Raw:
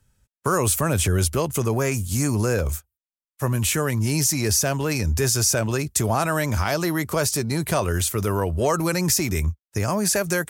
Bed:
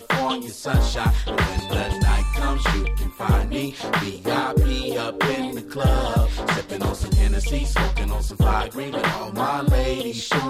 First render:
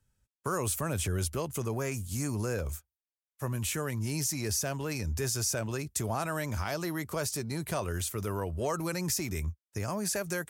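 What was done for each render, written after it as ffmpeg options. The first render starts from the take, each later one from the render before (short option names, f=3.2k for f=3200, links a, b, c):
-af "volume=-10.5dB"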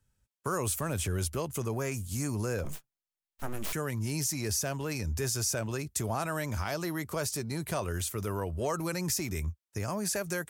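-filter_complex "[0:a]asettb=1/sr,asplit=3[a][b][c];[a]atrim=end=0.794[d];[b]atrim=start=0.79:end=1.26,asetpts=PTS-STARTPTS,afade=t=in:d=0.004:c=qsin,afade=t=out:st=0.466:d=0.004:c=qsin,aeval=exprs='sgn(val(0))*max(abs(val(0))-0.002,0)':c=same[e];[c]atrim=start=1.256[f];[d][e]acrossfade=d=0.004:c1=hsin:c2=qsin[g];[g][f]acrossfade=d=0.004:c1=qsin:c2=hsin,asettb=1/sr,asplit=3[h][i][j];[h]atrim=end=2.644[k];[i]atrim=start=2.64:end=3.73,asetpts=PTS-STARTPTS,afade=t=in:d=0.004:c=qsin,afade=t=out:st=1.086:d=0.004:c=qsin,aeval=exprs='abs(val(0))':c=same[l];[j]atrim=start=3.726[m];[k][l]acrossfade=d=0.004:c1=hsin:c2=qsin[n];[n][m]acrossfade=d=0.004:c1=qsin:c2=hsin"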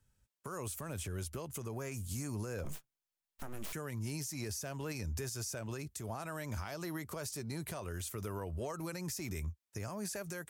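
-af "acompressor=threshold=-33dB:ratio=4,alimiter=level_in=6.5dB:limit=-24dB:level=0:latency=1:release=291,volume=-6.5dB"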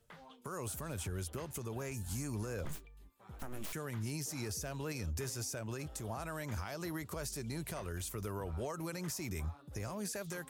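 -filter_complex "[1:a]volume=-34dB[a];[0:a][a]amix=inputs=2:normalize=0"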